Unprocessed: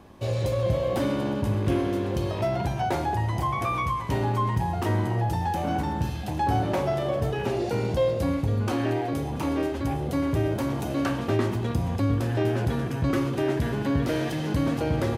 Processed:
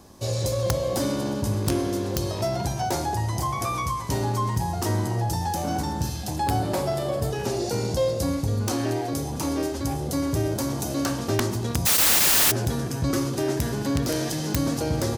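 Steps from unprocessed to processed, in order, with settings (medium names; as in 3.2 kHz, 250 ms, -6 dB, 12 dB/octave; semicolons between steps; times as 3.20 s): 11.85–12.50 s: spectral contrast reduction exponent 0.11; resonant high shelf 3.9 kHz +11 dB, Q 1.5; integer overflow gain 13.5 dB; 6.36–7.31 s: peaking EQ 6 kHz -8.5 dB 0.24 oct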